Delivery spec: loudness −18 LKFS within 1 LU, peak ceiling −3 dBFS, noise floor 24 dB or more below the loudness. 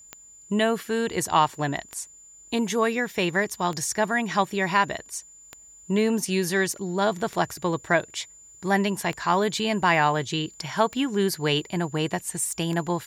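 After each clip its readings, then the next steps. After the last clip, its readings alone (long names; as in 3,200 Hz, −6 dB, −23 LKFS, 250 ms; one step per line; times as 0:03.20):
number of clicks 8; interfering tone 7,100 Hz; level of the tone −47 dBFS; integrated loudness −25.0 LKFS; sample peak −7.5 dBFS; target loudness −18.0 LKFS
→ click removal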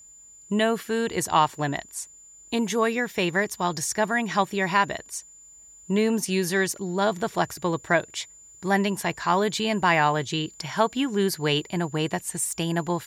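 number of clicks 0; interfering tone 7,100 Hz; level of the tone −47 dBFS
→ notch filter 7,100 Hz, Q 30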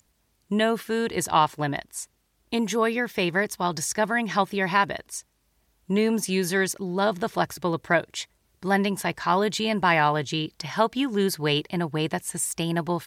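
interfering tone none found; integrated loudness −25.0 LKFS; sample peak −7.5 dBFS; target loudness −18.0 LKFS
→ level +7 dB
brickwall limiter −3 dBFS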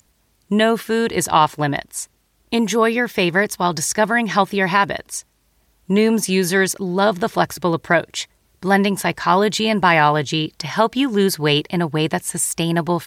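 integrated loudness −18.5 LKFS; sample peak −3.0 dBFS; background noise floor −62 dBFS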